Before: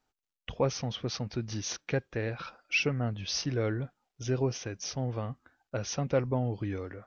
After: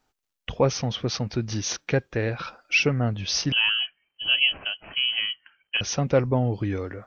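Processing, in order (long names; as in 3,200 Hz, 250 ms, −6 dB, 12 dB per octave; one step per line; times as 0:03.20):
0:03.52–0:05.81: voice inversion scrambler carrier 3,100 Hz
level +7 dB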